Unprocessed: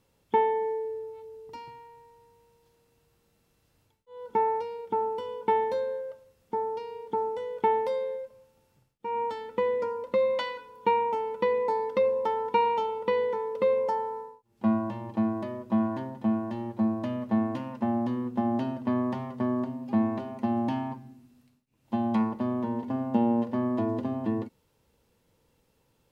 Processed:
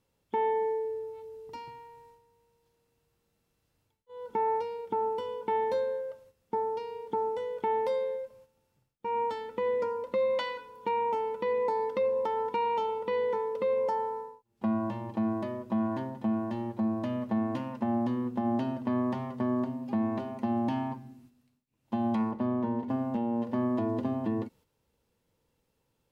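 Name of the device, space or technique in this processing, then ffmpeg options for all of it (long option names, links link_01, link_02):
clipper into limiter: -filter_complex "[0:a]agate=range=-7dB:threshold=-56dB:ratio=16:detection=peak,asettb=1/sr,asplit=3[link_01][link_02][link_03];[link_01]atrim=end=22.314[link_04];[link_02]atrim=start=22.31:end=22.89,asetpts=PTS-STARTPTS,afade=type=in:duration=0.004:curve=qsin,afade=type=out:start_time=0.576:duration=0.004:curve=qsin,highshelf=frequency=4100:gain=-10.5[link_05];[link_03]atrim=start=22.886[link_06];[link_04][link_05]acrossfade=duration=0.004:curve1=hsin:curve2=qsin[link_07];[link_07][link_06]acrossfade=duration=0.004:curve1=qsin:curve2=hsin,asoftclip=type=hard:threshold=-13.5dB,alimiter=limit=-21.5dB:level=0:latency=1:release=130"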